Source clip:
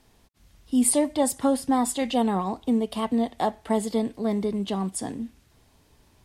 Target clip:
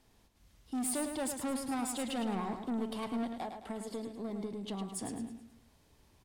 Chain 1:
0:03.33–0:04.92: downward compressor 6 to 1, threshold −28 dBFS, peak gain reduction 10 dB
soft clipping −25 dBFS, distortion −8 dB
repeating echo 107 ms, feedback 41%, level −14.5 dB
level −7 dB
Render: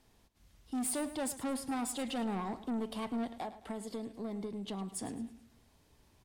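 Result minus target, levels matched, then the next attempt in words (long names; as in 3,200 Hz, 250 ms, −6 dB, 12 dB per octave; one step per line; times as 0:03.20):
echo-to-direct −7.5 dB
0:03.33–0:04.92: downward compressor 6 to 1, threshold −28 dBFS, peak gain reduction 10 dB
soft clipping −25 dBFS, distortion −8 dB
repeating echo 107 ms, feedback 41%, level −7 dB
level −7 dB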